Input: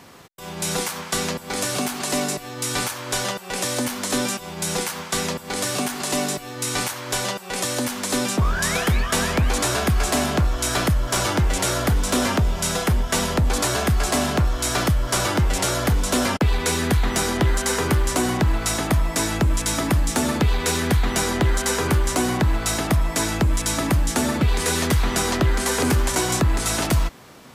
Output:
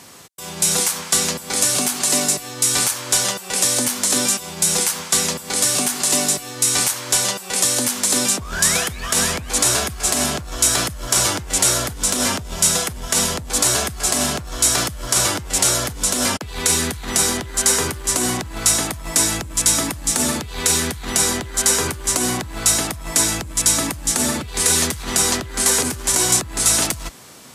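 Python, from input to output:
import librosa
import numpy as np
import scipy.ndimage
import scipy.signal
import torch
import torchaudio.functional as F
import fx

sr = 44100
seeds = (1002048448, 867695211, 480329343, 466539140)

y = fx.over_compress(x, sr, threshold_db=-21.0, ratio=-0.5)
y = scipy.signal.sosfilt(scipy.signal.butter(2, 49.0, 'highpass', fs=sr, output='sos'), y)
y = fx.peak_eq(y, sr, hz=8800.0, db=12.0, octaves=2.0)
y = y * 10.0 ** (-2.0 / 20.0)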